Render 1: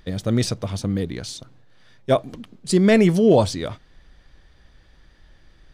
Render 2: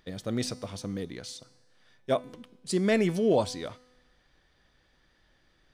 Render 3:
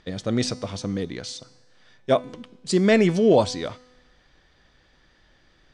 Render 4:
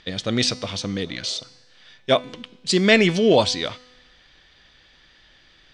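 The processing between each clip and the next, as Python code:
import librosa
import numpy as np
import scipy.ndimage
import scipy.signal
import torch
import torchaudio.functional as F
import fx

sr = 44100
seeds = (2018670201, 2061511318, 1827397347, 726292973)

y1 = fx.low_shelf(x, sr, hz=120.0, db=-12.0)
y1 = fx.comb_fb(y1, sr, f0_hz=250.0, decay_s=1.1, harmonics='all', damping=0.0, mix_pct=60)
y2 = scipy.signal.sosfilt(scipy.signal.butter(4, 8000.0, 'lowpass', fs=sr, output='sos'), y1)
y2 = F.gain(torch.from_numpy(y2), 7.0).numpy()
y3 = fx.spec_repair(y2, sr, seeds[0], start_s=1.08, length_s=0.3, low_hz=360.0, high_hz=1400.0, source='after')
y3 = fx.peak_eq(y3, sr, hz=3200.0, db=11.5, octaves=1.8)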